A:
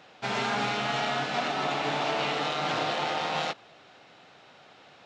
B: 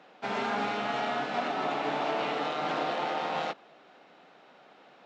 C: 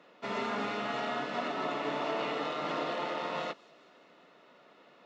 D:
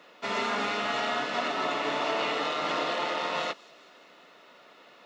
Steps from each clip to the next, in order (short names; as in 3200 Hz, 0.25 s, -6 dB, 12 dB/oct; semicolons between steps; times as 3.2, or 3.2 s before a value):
HPF 180 Hz 24 dB/oct; high shelf 2700 Hz -11.5 dB
notch comb 790 Hz; thin delay 0.19 s, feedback 62%, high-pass 5400 Hz, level -15 dB; gain -1.5 dB
tilt +2 dB/oct; gain +5 dB